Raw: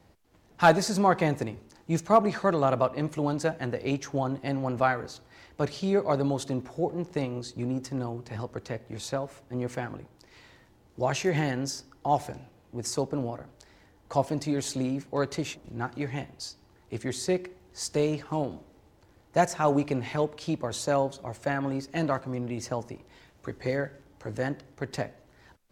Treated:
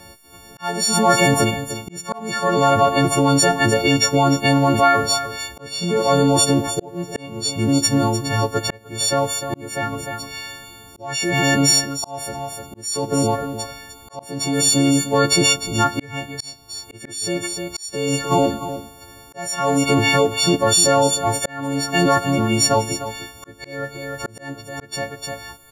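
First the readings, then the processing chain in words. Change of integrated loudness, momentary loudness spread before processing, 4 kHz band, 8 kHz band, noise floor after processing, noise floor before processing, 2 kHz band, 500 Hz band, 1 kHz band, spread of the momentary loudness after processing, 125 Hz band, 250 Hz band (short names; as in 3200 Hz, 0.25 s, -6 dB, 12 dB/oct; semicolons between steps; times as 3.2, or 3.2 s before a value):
+11.0 dB, 14 LU, +19.0 dB, +19.0 dB, -44 dBFS, -60 dBFS, +12.0 dB, +7.5 dB, +9.0 dB, 17 LU, +9.0 dB, +9.5 dB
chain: frequency quantiser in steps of 4 st; in parallel at +2 dB: negative-ratio compressor -29 dBFS, ratio -1; on the sum: echo 0.302 s -11.5 dB; auto swell 0.595 s; gain +5.5 dB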